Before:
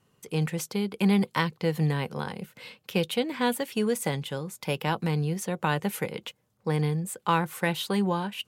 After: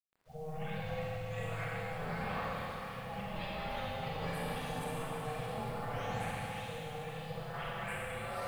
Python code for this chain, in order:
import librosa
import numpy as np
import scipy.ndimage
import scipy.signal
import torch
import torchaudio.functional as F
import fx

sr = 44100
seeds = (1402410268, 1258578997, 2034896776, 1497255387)

y = fx.spec_delay(x, sr, highs='late', ms=811)
y = fx.highpass(y, sr, hz=320.0, slope=6)
y = fx.high_shelf(y, sr, hz=2400.0, db=-8.5)
y = fx.echo_wet_lowpass(y, sr, ms=65, feedback_pct=51, hz=1300.0, wet_db=-7)
y = fx.over_compress(y, sr, threshold_db=-37.0, ratio=-1.0)
y = fx.high_shelf(y, sr, hz=7200.0, db=-11.0)
y = fx.quant_dither(y, sr, seeds[0], bits=10, dither='none')
y = y * np.sin(2.0 * np.pi * 310.0 * np.arange(len(y)) / sr)
y = fx.rev_schroeder(y, sr, rt60_s=3.6, comb_ms=32, drr_db=-6.5)
y = y * librosa.db_to_amplitude(-6.0)